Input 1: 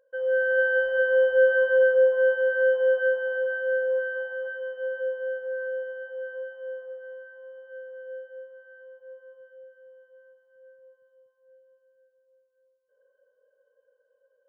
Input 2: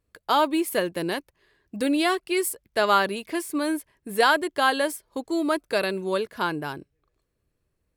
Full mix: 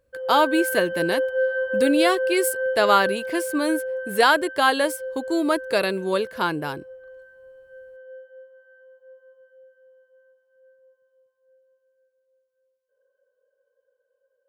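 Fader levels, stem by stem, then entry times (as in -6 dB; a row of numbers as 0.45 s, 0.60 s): -3.5 dB, +2.5 dB; 0.00 s, 0.00 s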